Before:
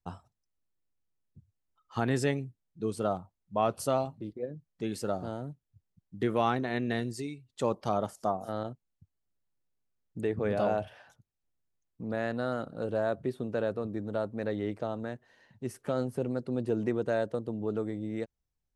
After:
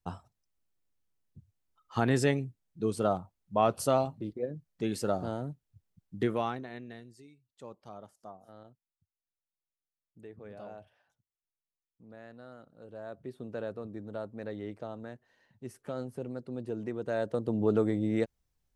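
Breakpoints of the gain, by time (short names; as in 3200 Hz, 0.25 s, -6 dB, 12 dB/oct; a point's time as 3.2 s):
6.19 s +2 dB
6.53 s -7.5 dB
7.04 s -17.5 dB
12.79 s -17.5 dB
13.47 s -6.5 dB
16.95 s -6.5 dB
17.59 s +6 dB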